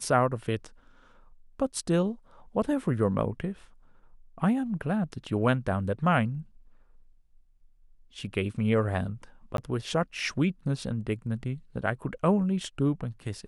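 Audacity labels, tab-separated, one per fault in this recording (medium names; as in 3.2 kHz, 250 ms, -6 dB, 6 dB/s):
9.570000	9.580000	dropout 12 ms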